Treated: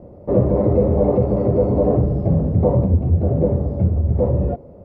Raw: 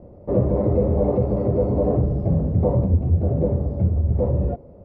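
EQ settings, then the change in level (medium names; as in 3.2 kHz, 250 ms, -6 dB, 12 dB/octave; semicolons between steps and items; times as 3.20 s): bass shelf 60 Hz -6 dB; +4.0 dB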